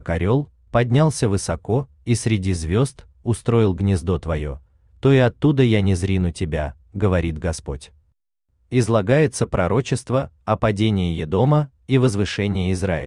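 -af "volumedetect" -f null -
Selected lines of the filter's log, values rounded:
mean_volume: -19.9 dB
max_volume: -4.0 dB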